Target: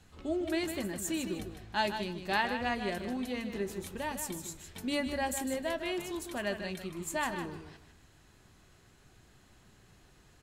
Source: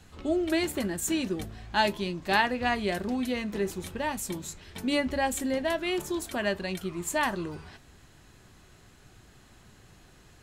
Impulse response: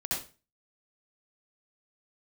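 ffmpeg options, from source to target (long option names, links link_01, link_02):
-filter_complex "[0:a]asettb=1/sr,asplit=3[link_01][link_02][link_03];[link_01]atrim=end=3.764[link_04];[link_02]atrim=start=3.76:end=5.53,asetpts=PTS-STARTPTS,afade=type=in:duration=0.004:curve=qsin,afade=type=out:start_time=1.766:duration=0.004:curve=qsin,highshelf=frequency=7500:gain=5.5[link_05];[link_03]atrim=start=5.526[link_06];[link_04][link_05]acrossfade=duration=0.004:curve1=hsin:curve2=qsin[link_07];[link_07][link_06]acrossfade=duration=0.004:curve1=qsin:curve2=hsin,asplit=2[link_08][link_09];[link_09]aecho=0:1:154|308|462:0.376|0.0677|0.0122[link_10];[link_08][link_10]amix=inputs=2:normalize=0,volume=-6dB"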